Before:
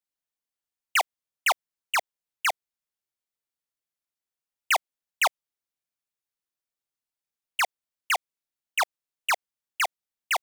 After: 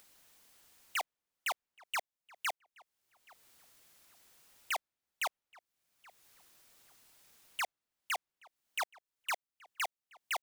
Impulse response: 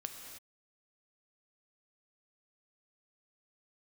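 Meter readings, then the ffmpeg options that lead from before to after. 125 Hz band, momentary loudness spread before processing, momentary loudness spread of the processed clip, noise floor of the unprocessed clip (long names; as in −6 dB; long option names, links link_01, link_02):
can't be measured, 6 LU, 5 LU, below −85 dBFS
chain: -filter_complex "[0:a]acompressor=mode=upward:threshold=-31dB:ratio=2.5,asoftclip=type=tanh:threshold=-25dB,asplit=2[link_01][link_02];[link_02]adelay=825,lowpass=frequency=2600:poles=1,volume=-23dB,asplit=2[link_03][link_04];[link_04]adelay=825,lowpass=frequency=2600:poles=1,volume=0.25[link_05];[link_01][link_03][link_05]amix=inputs=3:normalize=0,volume=-6.5dB"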